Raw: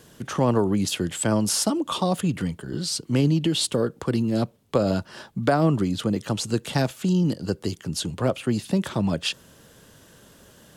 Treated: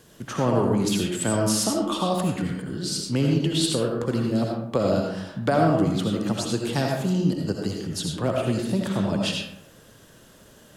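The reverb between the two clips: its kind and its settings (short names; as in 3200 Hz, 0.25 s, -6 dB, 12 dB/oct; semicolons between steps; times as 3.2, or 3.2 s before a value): digital reverb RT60 0.83 s, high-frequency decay 0.5×, pre-delay 40 ms, DRR 0 dB; gain -2.5 dB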